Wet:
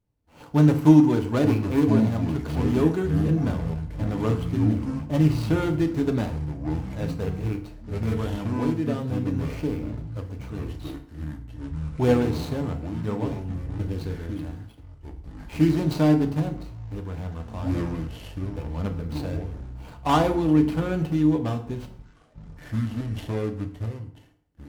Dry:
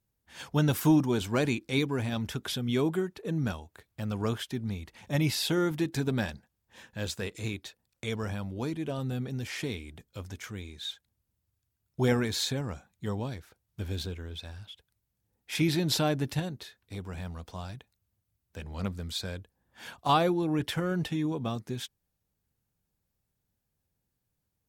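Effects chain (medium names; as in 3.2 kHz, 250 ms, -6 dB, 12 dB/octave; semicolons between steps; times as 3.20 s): median filter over 25 samples; ever faster or slower copies 669 ms, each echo -6 st, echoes 3, each echo -6 dB; FDN reverb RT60 0.6 s, low-frequency decay 1×, high-frequency decay 0.75×, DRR 4.5 dB; trim +4.5 dB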